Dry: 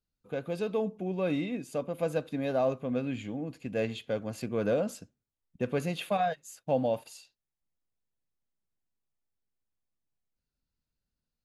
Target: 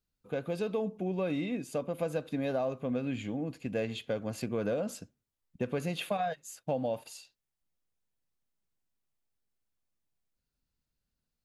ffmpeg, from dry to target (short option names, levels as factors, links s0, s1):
-af "acompressor=threshold=0.0316:ratio=5,volume=1.19"